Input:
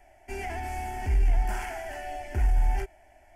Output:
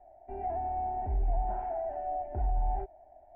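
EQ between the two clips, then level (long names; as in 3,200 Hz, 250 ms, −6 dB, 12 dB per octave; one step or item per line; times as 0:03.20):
low-pass with resonance 700 Hz, resonance Q 3.9
−7.0 dB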